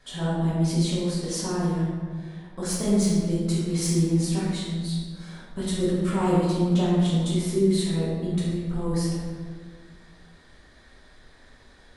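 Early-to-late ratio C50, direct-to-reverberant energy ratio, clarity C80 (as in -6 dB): -1.5 dB, -9.0 dB, 1.0 dB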